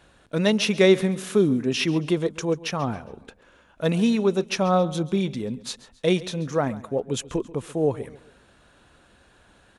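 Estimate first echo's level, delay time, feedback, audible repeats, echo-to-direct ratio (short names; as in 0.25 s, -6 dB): -18.5 dB, 0.136 s, 39%, 3, -18.0 dB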